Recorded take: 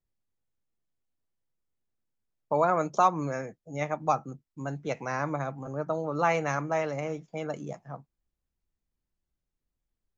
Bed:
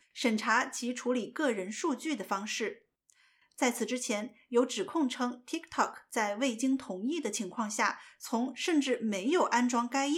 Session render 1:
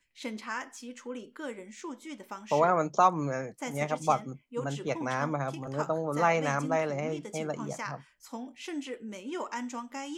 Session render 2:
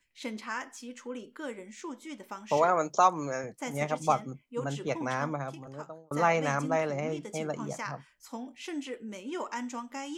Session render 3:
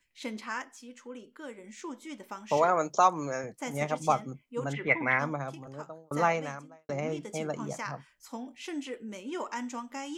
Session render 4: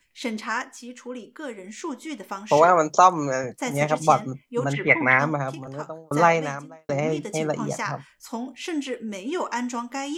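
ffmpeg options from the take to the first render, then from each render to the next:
ffmpeg -i in.wav -i bed.wav -filter_complex "[1:a]volume=-8.5dB[link_01];[0:a][link_01]amix=inputs=2:normalize=0" out.wav
ffmpeg -i in.wav -filter_complex "[0:a]asettb=1/sr,asplit=3[link_01][link_02][link_03];[link_01]atrim=end=2.574[link_04];[link_02]atrim=start=2.57:end=3.44,asetpts=PTS-STARTPTS,afade=type=in:duration=0.004:curve=qsin,afade=type=out:start_time=0.866:duration=0.004:curve=qsin,bass=frequency=250:gain=-8,treble=frequency=4000:gain=6[link_05];[link_03]atrim=start=3.436[link_06];[link_04][link_05]acrossfade=duration=0.004:curve1=hsin:curve2=qsin[link_07];[link_07][link_06]acrossfade=duration=0.004:curve1=qsin:curve2=hsin,asplit=2[link_08][link_09];[link_08]atrim=end=6.11,asetpts=PTS-STARTPTS,afade=type=out:start_time=5.1:duration=1.01[link_10];[link_09]atrim=start=6.11,asetpts=PTS-STARTPTS,afade=type=in:duration=0.004:curve=hsin[link_11];[link_10][link_11]concat=n=2:v=0:a=1" out.wav
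ffmpeg -i in.wav -filter_complex "[0:a]asplit=3[link_01][link_02][link_03];[link_01]afade=type=out:start_time=4.72:duration=0.02[link_04];[link_02]lowpass=frequency=2100:width_type=q:width=11,afade=type=in:start_time=4.72:duration=0.02,afade=type=out:start_time=5.18:duration=0.02[link_05];[link_03]afade=type=in:start_time=5.18:duration=0.02[link_06];[link_04][link_05][link_06]amix=inputs=3:normalize=0,asplit=4[link_07][link_08][link_09][link_10];[link_07]atrim=end=0.622[link_11];[link_08]atrim=start=0.618:end=1.642,asetpts=PTS-STARTPTS,volume=-4.5dB[link_12];[link_09]atrim=start=1.638:end=6.89,asetpts=PTS-STARTPTS,afade=type=out:start_time=4.602:duration=0.65:curve=qua[link_13];[link_10]atrim=start=6.89,asetpts=PTS-STARTPTS,afade=type=in:duration=0.004:curve=hsin[link_14];[link_11][link_12]acrossfade=duration=0.004:curve1=hsin:curve2=hsin[link_15];[link_13][link_14]concat=n=2:v=0:a=1[link_16];[link_15][link_16]acrossfade=duration=0.004:curve1=hsin:curve2=hsin" out.wav
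ffmpeg -i in.wav -af "volume=8.5dB,alimiter=limit=-3dB:level=0:latency=1" out.wav

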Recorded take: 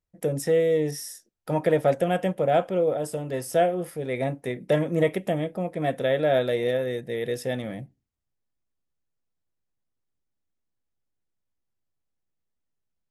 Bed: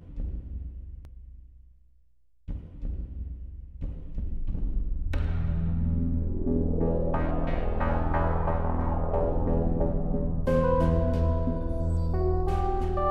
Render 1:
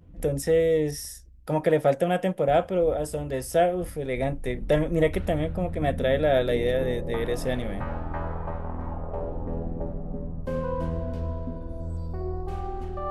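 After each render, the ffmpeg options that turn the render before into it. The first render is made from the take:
ffmpeg -i in.wav -i bed.wav -filter_complex "[1:a]volume=-5.5dB[link_01];[0:a][link_01]amix=inputs=2:normalize=0" out.wav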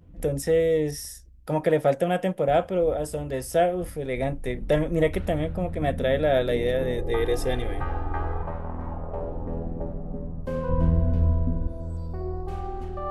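ffmpeg -i in.wav -filter_complex "[0:a]asettb=1/sr,asplit=3[link_01][link_02][link_03];[link_01]atrim=end=6.984[link_04];[link_02]atrim=start=6.98:end=8.43,asetpts=PTS-STARTPTS,afade=type=in:duration=0.004:curve=qsin,afade=type=out:start_time=1.446:duration=0.004:curve=qsin,aecho=1:1:2.5:0.81,atrim=end_sample=63945[link_05];[link_03]atrim=start=8.426[link_06];[link_04][link_05]acrossfade=duration=0.004:curve1=hsin:curve2=qsin[link_07];[link_07][link_06]acrossfade=duration=0.004:curve1=qsin:curve2=hsin,asettb=1/sr,asplit=3[link_08][link_09][link_10];[link_08]atrim=end=10.694[link_11];[link_09]atrim=start=10.69:end=11.68,asetpts=PTS-STARTPTS,afade=type=in:duration=0.004:curve=qsin,afade=type=out:start_time=0.986:duration=0.004:curve=qsin,bass=frequency=250:gain=10,treble=frequency=4000:gain=-8[link_12];[link_10]atrim=start=11.676[link_13];[link_11][link_12]acrossfade=duration=0.004:curve1=hsin:curve2=qsin[link_14];[link_14][link_13]acrossfade=duration=0.004:curve1=qsin:curve2=hsin" out.wav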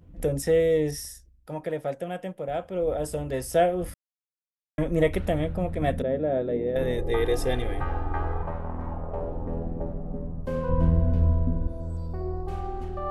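ffmpeg -i in.wav -filter_complex "[0:a]asettb=1/sr,asplit=3[link_01][link_02][link_03];[link_01]atrim=end=6.024[link_04];[link_02]atrim=start=6.02:end=6.76,asetpts=PTS-STARTPTS,afade=type=in:duration=0.004:curve=qsin,afade=type=out:start_time=0.736:duration=0.004:curve=qsin,bandpass=frequency=280:width_type=q:width=0.83[link_05];[link_03]atrim=start=6.756[link_06];[link_04][link_05]acrossfade=duration=0.004:curve1=hsin:curve2=qsin[link_07];[link_07][link_06]acrossfade=duration=0.004:curve1=qsin:curve2=hsin,asplit=5[link_08][link_09][link_10][link_11][link_12];[link_08]atrim=end=1.4,asetpts=PTS-STARTPTS,afade=type=out:start_time=0.98:duration=0.42:silence=0.354813[link_13];[link_09]atrim=start=1.4:end=2.63,asetpts=PTS-STARTPTS,volume=-9dB[link_14];[link_10]atrim=start=2.63:end=3.94,asetpts=PTS-STARTPTS,afade=type=in:duration=0.42:silence=0.354813,afade=type=out:start_time=1.306:duration=0.004:curve=hsin[link_15];[link_11]atrim=start=3.94:end=4.78,asetpts=PTS-STARTPTS,volume=0[link_16];[link_12]atrim=start=4.78,asetpts=PTS-STARTPTS,afade=type=in:duration=0.004:curve=hsin[link_17];[link_13][link_14][link_15][link_16][link_17]concat=n=5:v=0:a=1" out.wav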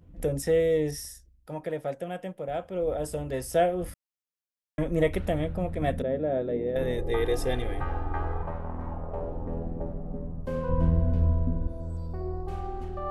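ffmpeg -i in.wav -af "volume=-2dB" out.wav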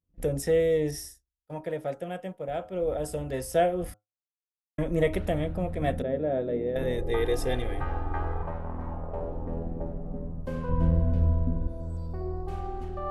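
ffmpeg -i in.wav -af "bandreject=frequency=104.7:width_type=h:width=4,bandreject=frequency=209.4:width_type=h:width=4,bandreject=frequency=314.1:width_type=h:width=4,bandreject=frequency=418.8:width_type=h:width=4,bandreject=frequency=523.5:width_type=h:width=4,bandreject=frequency=628.2:width_type=h:width=4,bandreject=frequency=732.9:width_type=h:width=4,bandreject=frequency=837.6:width_type=h:width=4,bandreject=frequency=942.3:width_type=h:width=4,bandreject=frequency=1047:width_type=h:width=4,bandreject=frequency=1151.7:width_type=h:width=4,bandreject=frequency=1256.4:width_type=h:width=4,bandreject=frequency=1361.1:width_type=h:width=4,bandreject=frequency=1465.8:width_type=h:width=4,agate=range=-33dB:threshold=-36dB:ratio=3:detection=peak" out.wav

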